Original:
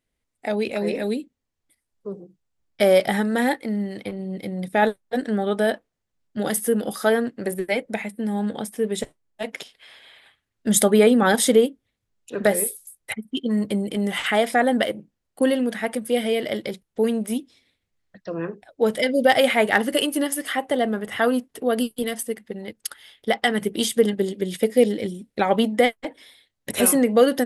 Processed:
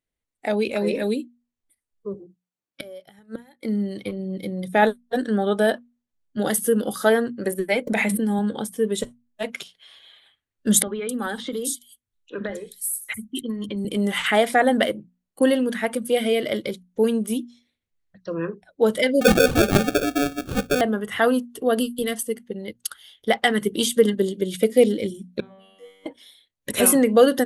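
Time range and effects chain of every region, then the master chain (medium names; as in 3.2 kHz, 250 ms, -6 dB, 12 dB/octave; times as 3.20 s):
2.14–3.63 s: high-pass 190 Hz + inverted gate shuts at -14 dBFS, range -25 dB
7.87–8.39 s: high-pass 100 Hz + level flattener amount 100%
10.82–13.85 s: compression 16:1, threshold -21 dBFS + peaking EQ 570 Hz -5 dB 1.5 oct + three bands offset in time mids, lows, highs 40/270 ms, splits 170/4100 Hz
19.21–20.81 s: low-pass 2.2 kHz 24 dB/octave + sample-rate reducer 1 kHz
25.40–26.06 s: compression 2.5:1, threshold -26 dBFS + feedback comb 96 Hz, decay 1.7 s, mix 100%
whole clip: band-stop 5.1 kHz, Q 14; spectral noise reduction 9 dB; hum notches 60/120/180/240 Hz; trim +1.5 dB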